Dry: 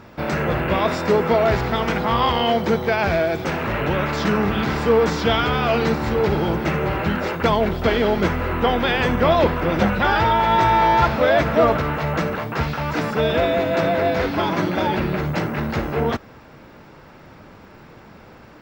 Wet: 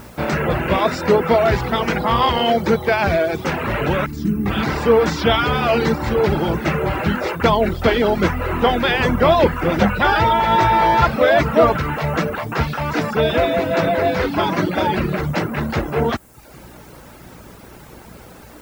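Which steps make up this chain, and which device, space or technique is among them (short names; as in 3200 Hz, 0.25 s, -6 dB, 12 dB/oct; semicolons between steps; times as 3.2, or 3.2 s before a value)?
video cassette with head-switching buzz (buzz 60 Hz, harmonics 15, -47 dBFS -4 dB/oct; white noise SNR 32 dB); reverb removal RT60 0.69 s; 4.06–4.46 EQ curve 320 Hz 0 dB, 560 Hz -28 dB, 3300 Hz -19 dB, 11000 Hz -1 dB; gain +3.5 dB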